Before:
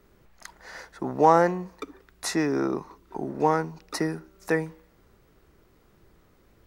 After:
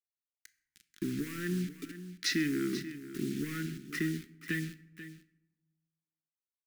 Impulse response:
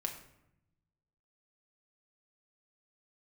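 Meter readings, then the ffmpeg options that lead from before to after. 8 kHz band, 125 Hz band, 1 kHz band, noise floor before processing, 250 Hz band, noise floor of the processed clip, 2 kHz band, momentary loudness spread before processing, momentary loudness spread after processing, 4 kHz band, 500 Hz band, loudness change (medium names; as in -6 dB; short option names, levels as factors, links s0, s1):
-5.0 dB, -4.0 dB, -29.5 dB, -61 dBFS, -5.0 dB, under -85 dBFS, -4.0 dB, 23 LU, 14 LU, +0.5 dB, -17.0 dB, -10.0 dB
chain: -filter_complex "[0:a]highpass=f=46:w=0.5412,highpass=f=46:w=1.3066,afwtdn=0.0158,lowshelf=f=220:g=-3,alimiter=limit=0.178:level=0:latency=1,acompressor=threshold=0.0447:ratio=3,acrusher=bits=7:mix=0:aa=0.000001,asoftclip=type=tanh:threshold=0.0794,asuperstop=centerf=720:order=8:qfactor=0.56,aecho=1:1:487:0.211,asplit=2[s0][s1];[1:a]atrim=start_sample=2205,lowshelf=f=130:g=-8[s2];[s1][s2]afir=irnorm=-1:irlink=0,volume=0.668[s3];[s0][s3]amix=inputs=2:normalize=0"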